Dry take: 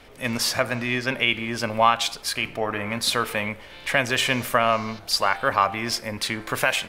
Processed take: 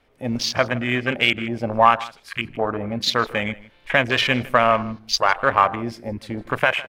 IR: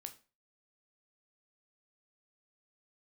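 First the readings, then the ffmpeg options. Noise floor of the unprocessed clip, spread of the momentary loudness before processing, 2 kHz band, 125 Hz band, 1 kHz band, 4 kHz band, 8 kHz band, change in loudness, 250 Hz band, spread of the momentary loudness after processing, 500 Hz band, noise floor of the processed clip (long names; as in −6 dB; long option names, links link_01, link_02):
−44 dBFS, 7 LU, +2.0 dB, +3.5 dB, +3.5 dB, +0.5 dB, −5.0 dB, +2.5 dB, +3.5 dB, 12 LU, +3.5 dB, −55 dBFS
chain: -filter_complex "[0:a]afwtdn=0.0501,asplit=2[link_01][link_02];[link_02]adynamicsmooth=sensitivity=4:basefreq=4300,volume=-2.5dB[link_03];[link_01][link_03]amix=inputs=2:normalize=0,asplit=2[link_04][link_05];[link_05]adelay=157.4,volume=-20dB,highshelf=frequency=4000:gain=-3.54[link_06];[link_04][link_06]amix=inputs=2:normalize=0,volume=-1dB"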